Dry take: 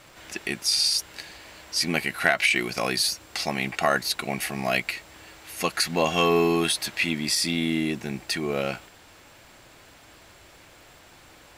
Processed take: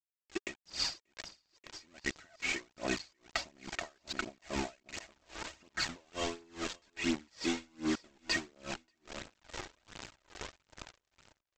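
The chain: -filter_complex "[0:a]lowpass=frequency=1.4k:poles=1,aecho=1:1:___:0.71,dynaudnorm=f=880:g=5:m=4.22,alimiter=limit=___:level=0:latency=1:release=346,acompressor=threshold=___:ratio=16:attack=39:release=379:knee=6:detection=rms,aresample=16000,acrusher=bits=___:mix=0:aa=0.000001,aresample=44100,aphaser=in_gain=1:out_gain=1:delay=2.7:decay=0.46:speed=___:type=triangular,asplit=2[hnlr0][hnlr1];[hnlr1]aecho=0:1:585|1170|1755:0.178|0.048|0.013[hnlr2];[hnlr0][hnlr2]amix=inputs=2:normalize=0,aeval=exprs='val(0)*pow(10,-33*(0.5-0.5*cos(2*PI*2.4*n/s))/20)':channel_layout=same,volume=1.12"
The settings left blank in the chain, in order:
3.2, 0.316, 0.0282, 5, 1.4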